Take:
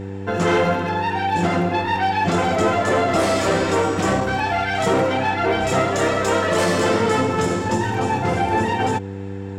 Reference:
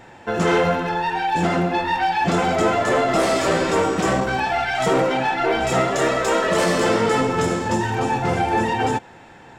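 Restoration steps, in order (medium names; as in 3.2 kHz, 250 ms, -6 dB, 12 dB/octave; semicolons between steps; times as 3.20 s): de-hum 97.8 Hz, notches 5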